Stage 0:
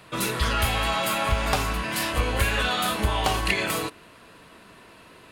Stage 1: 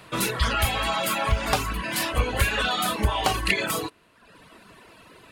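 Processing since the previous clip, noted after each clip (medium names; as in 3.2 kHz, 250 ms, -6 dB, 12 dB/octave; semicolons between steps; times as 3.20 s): reverb removal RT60 1 s; trim +2 dB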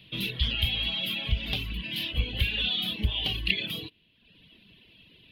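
FFT filter 190 Hz 0 dB, 1.3 kHz -24 dB, 3.2 kHz +9 dB, 7.8 kHz -29 dB, 12 kHz -9 dB; trim -3.5 dB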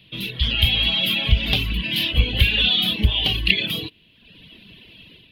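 level rider gain up to 9 dB; trim +1.5 dB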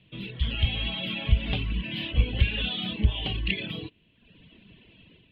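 hard clipper -4 dBFS, distortion -35 dB; distance through air 440 m; trim -4 dB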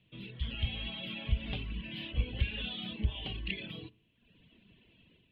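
reverberation, pre-delay 4 ms, DRR 18.5 dB; trim -9 dB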